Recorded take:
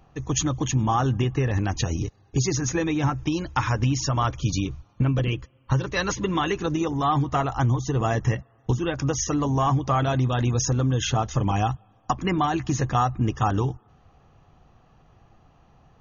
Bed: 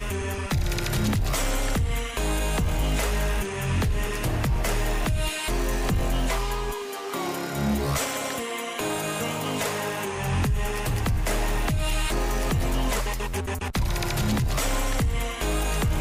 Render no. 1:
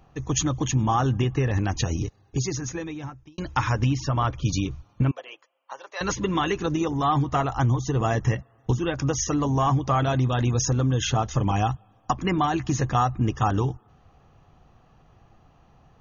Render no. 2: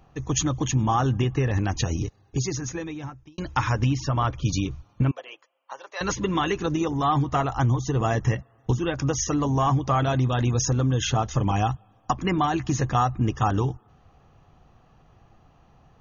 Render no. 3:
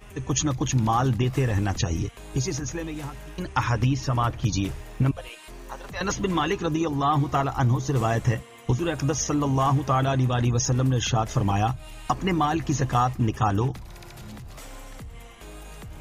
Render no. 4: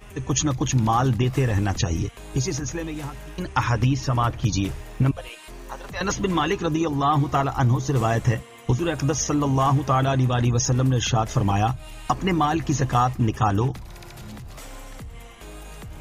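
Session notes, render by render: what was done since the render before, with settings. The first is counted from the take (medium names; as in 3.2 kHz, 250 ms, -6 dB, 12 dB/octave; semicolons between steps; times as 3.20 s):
1.99–3.38 s: fade out; 3.93–4.45 s: distance through air 140 m; 5.11–6.01 s: ladder high-pass 590 Hz, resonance 50%
no audible change
add bed -16.5 dB
trim +2 dB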